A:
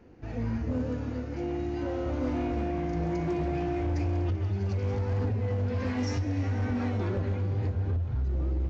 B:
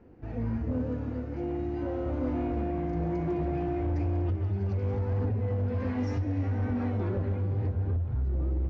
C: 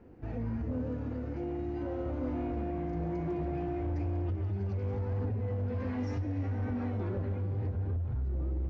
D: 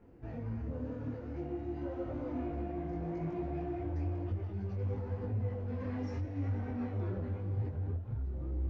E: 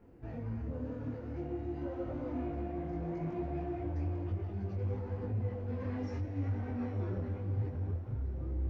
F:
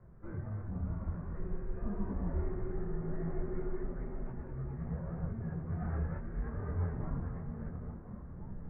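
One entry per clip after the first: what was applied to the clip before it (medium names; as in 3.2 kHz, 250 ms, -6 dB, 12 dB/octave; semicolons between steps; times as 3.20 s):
low-pass 1.3 kHz 6 dB/octave
peak limiter -28.5 dBFS, peak gain reduction 4.5 dB
detune thickener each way 32 cents
echo that smears into a reverb 920 ms, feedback 43%, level -14.5 dB
mistuned SSB -330 Hz 180–2100 Hz; trim +5 dB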